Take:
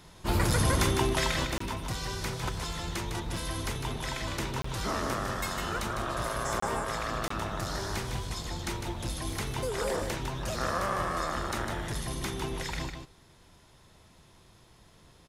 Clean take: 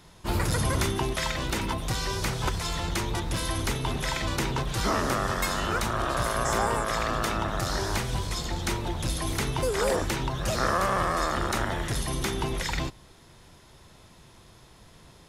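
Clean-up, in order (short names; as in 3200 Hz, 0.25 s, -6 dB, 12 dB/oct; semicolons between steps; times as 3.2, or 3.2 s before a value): interpolate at 1.58/4.62/6.6/7.28, 24 ms; inverse comb 0.154 s -6.5 dB; gain correction +6 dB, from 1.45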